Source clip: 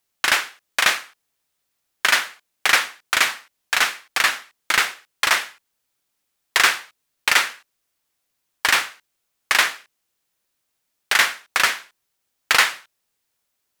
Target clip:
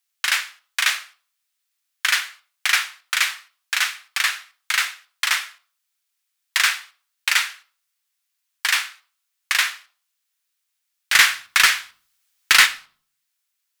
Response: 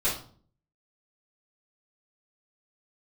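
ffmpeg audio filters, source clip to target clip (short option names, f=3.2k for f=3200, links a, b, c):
-filter_complex "[0:a]highpass=1.5k,asplit=3[a][b][c];[a]afade=t=out:st=11.12:d=0.02[d];[b]acontrast=84,afade=t=in:st=11.12:d=0.02,afade=t=out:st=12.65:d=0.02[e];[c]afade=t=in:st=12.65:d=0.02[f];[d][e][f]amix=inputs=3:normalize=0,asplit=2[g][h];[1:a]atrim=start_sample=2205,adelay=6[i];[h][i]afir=irnorm=-1:irlink=0,volume=-22dB[j];[g][j]amix=inputs=2:normalize=0,volume=-1dB"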